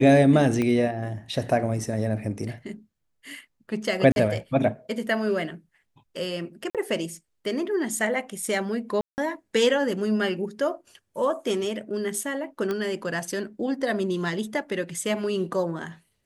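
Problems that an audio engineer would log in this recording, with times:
0.62 pop -14 dBFS
4.12–4.16 gap 41 ms
6.7–6.75 gap 47 ms
9.01–9.18 gap 0.169 s
12.71 pop -16 dBFS

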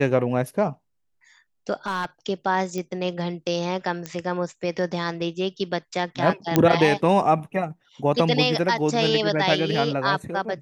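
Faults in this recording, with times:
1.86–2.05 clipped -21 dBFS
2.78 pop -17 dBFS
4.06 pop -15 dBFS
6.56 pop -4 dBFS

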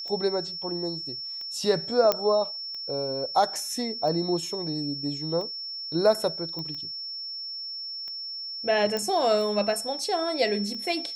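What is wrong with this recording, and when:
tick 45 rpm -28 dBFS
tone 5400 Hz -33 dBFS
2.12 pop -7 dBFS
6.59 pop -23 dBFS
8.97 pop -15 dBFS

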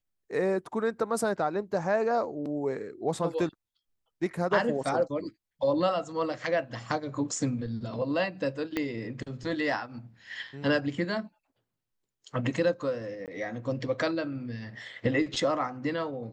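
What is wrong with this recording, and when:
8.77 pop -16 dBFS
13.26–13.28 gap 18 ms

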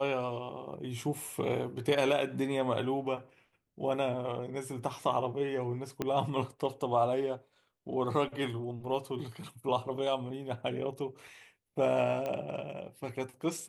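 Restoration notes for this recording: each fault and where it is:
6.02 pop -18 dBFS
12.26 pop -23 dBFS

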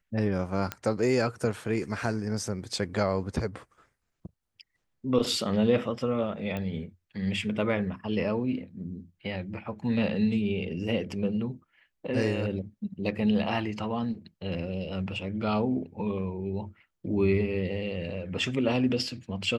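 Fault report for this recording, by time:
0.72 pop -15 dBFS
6.57 pop -21 dBFS

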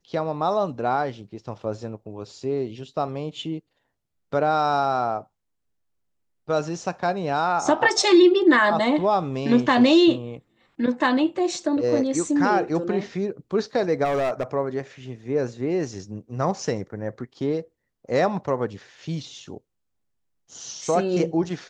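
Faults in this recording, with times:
14.04–14.43 clipped -20 dBFS

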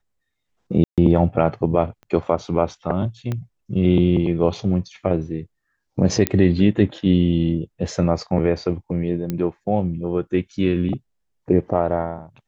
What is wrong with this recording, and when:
0.84–0.98 gap 0.137 s
2.03 pop -31 dBFS
3.32 pop -14 dBFS
6.27 pop -2 dBFS
9.3 pop -12 dBFS

